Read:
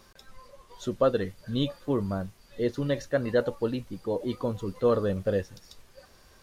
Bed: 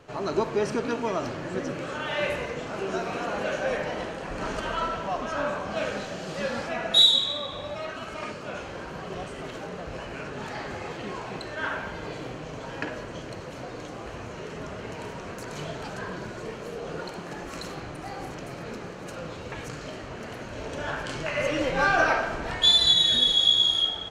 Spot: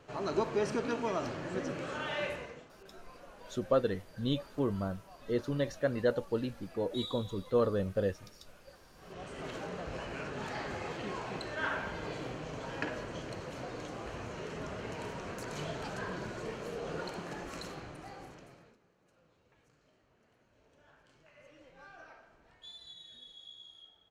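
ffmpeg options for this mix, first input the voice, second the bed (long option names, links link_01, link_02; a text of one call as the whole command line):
ffmpeg -i stem1.wav -i stem2.wav -filter_complex "[0:a]adelay=2700,volume=-4.5dB[link_01];[1:a]volume=16dB,afade=type=out:start_time=2.03:duration=0.68:silence=0.1,afade=type=in:start_time=8.96:duration=0.54:silence=0.0841395,afade=type=out:start_time=17.19:duration=1.58:silence=0.0398107[link_02];[link_01][link_02]amix=inputs=2:normalize=0" out.wav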